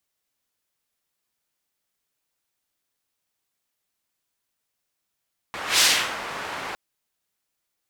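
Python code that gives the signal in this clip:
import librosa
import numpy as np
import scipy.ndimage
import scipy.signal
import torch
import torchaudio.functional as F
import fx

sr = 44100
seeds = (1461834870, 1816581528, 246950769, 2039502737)

y = fx.whoosh(sr, seeds[0], length_s=1.21, peak_s=0.27, rise_s=0.18, fall_s=0.39, ends_hz=1300.0, peak_hz=4700.0, q=0.86, swell_db=16.0)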